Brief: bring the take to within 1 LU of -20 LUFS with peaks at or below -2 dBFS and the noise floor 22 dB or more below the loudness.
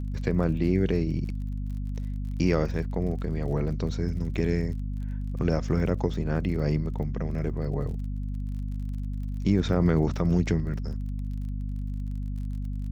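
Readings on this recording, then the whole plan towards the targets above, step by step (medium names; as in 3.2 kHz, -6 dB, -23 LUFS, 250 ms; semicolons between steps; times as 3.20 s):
tick rate 37 per s; hum 50 Hz; highest harmonic 250 Hz; hum level -29 dBFS; loudness -29.0 LUFS; peak level -10.0 dBFS; loudness target -20.0 LUFS
-> de-click; hum notches 50/100/150/200/250 Hz; trim +9 dB; peak limiter -2 dBFS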